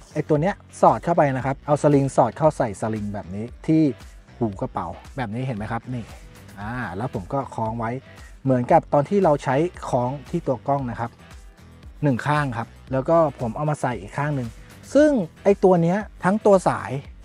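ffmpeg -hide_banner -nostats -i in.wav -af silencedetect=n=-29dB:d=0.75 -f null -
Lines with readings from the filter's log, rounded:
silence_start: 11.07
silence_end: 12.02 | silence_duration: 0.96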